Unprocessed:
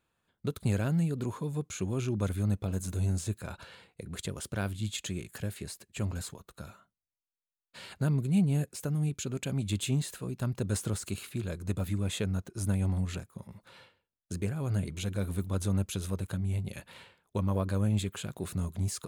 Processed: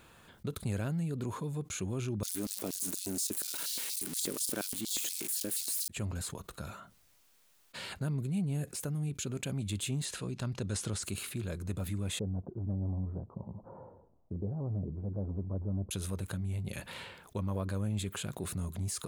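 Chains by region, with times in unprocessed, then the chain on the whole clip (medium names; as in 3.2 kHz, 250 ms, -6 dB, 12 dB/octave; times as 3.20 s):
2.23–5.88 s: zero-crossing glitches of -27.5 dBFS + LFO high-pass square 4.2 Hz 290–4500 Hz
10.05–11.03 s: low-pass 5.2 kHz + treble shelf 3.7 kHz +10.5 dB
12.19–15.91 s: steep low-pass 930 Hz + loudspeaker Doppler distortion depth 0.32 ms
whole clip: dynamic bell 9.8 kHz, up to +4 dB, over -55 dBFS, Q 2.4; level flattener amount 50%; trim -8 dB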